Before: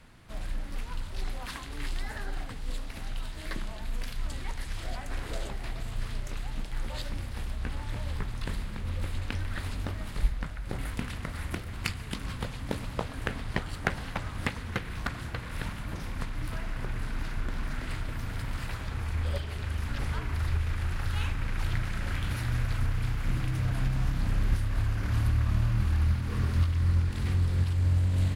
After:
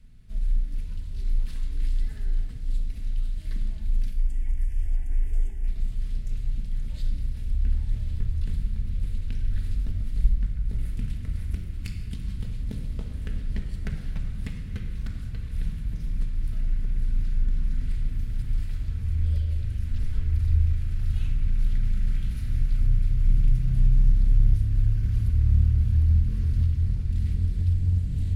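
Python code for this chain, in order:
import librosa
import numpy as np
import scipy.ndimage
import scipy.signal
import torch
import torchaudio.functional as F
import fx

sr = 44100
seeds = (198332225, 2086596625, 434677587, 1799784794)

p1 = fx.tone_stack(x, sr, knobs='10-0-1')
p2 = np.clip(p1, -10.0 ** (-30.0 / 20.0), 10.0 ** (-30.0 / 20.0))
p3 = p1 + (p2 * 10.0 ** (-6.0 / 20.0))
p4 = fx.fixed_phaser(p3, sr, hz=820.0, stages=8, at=(4.11, 5.68))
p5 = fx.room_shoebox(p4, sr, seeds[0], volume_m3=2200.0, walls='mixed', distance_m=1.5)
y = p5 * 10.0 ** (7.5 / 20.0)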